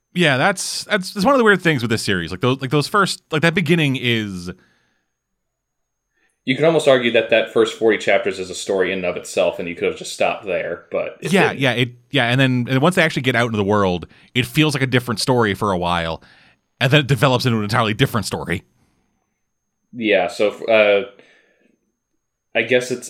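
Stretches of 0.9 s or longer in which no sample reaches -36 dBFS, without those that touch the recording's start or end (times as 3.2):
4.53–6.47
18.6–19.93
21.19–22.55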